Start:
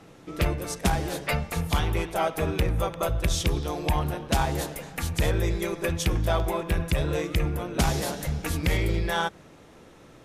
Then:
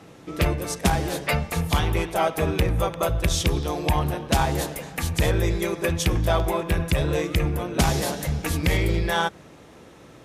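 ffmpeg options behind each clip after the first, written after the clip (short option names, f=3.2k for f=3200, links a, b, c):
-af "highpass=43,bandreject=f=1.4k:w=30,volume=3.5dB"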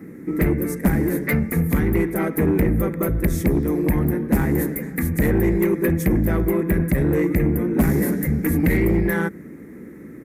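-af "firequalizer=gain_entry='entry(120,0);entry(210,13);entry(400,6);entry(660,-12);entry(1000,-10);entry(2000,5);entry(2900,-23);entry(14000,10)':delay=0.05:min_phase=1,asoftclip=type=tanh:threshold=-13.5dB,volume=2.5dB"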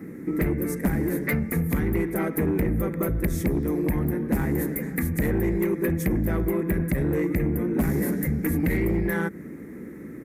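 -af "acompressor=threshold=-25dB:ratio=2"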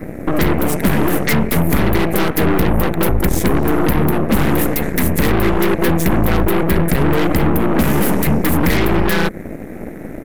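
-af "aeval=exprs='0.188*(cos(1*acos(clip(val(0)/0.188,-1,1)))-cos(1*PI/2))+0.0531*(cos(8*acos(clip(val(0)/0.188,-1,1)))-cos(8*PI/2))':c=same,volume=7.5dB"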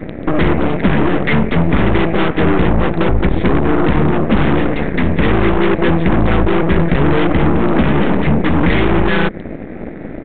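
-af "volume=2dB" -ar 8000 -c:a adpcm_g726 -b:a 40k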